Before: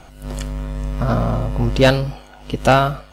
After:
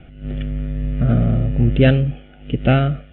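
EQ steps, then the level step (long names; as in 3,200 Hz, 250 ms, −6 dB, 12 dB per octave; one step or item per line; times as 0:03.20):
Butterworth low-pass 3,500 Hz 72 dB per octave
parametric band 140 Hz +7 dB 3 octaves
phaser with its sweep stopped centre 2,400 Hz, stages 4
−2.0 dB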